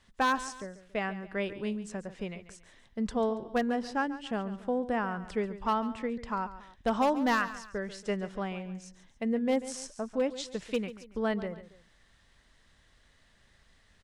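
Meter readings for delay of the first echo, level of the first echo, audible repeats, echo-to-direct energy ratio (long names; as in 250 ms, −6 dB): 140 ms, −14.5 dB, 2, −14.0 dB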